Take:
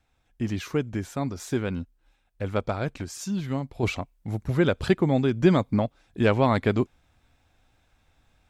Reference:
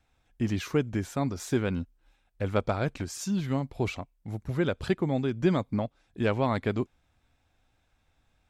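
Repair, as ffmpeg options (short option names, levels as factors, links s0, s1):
-af "asetnsamples=n=441:p=0,asendcmd='3.83 volume volume -5.5dB',volume=1"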